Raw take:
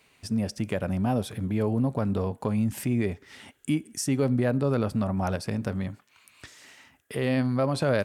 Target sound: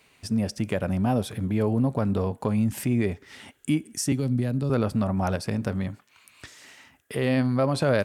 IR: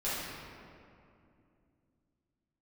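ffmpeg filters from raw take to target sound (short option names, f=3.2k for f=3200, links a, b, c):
-filter_complex "[0:a]asettb=1/sr,asplit=3[a][b][c];[a]atrim=end=4.124[d];[b]atrim=start=4.12:end=4.7,asetpts=PTS-STARTPTS,afade=t=in:d=0.004:c=qsin,afade=t=out:st=0.576:d=0.004:c=qsin,acrossover=split=270|3000[e][f][g];[f]acompressor=threshold=-41dB:ratio=3[h];[e][h][g]amix=inputs=3:normalize=0[i];[c]atrim=start=4.696[j];[d][i]acrossfade=d=0.004:c1=hsin:c2=qsin[k];[k][j]acrossfade=d=0.004:c1=qsin:c2=hsin,volume=2dB"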